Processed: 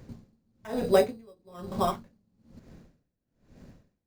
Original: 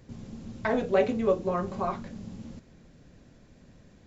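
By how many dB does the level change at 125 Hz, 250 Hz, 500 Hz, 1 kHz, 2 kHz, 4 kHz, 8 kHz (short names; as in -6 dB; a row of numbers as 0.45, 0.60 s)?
-2.5 dB, -3.5 dB, -0.5 dB, 0.0 dB, -5.0 dB, +5.0 dB, n/a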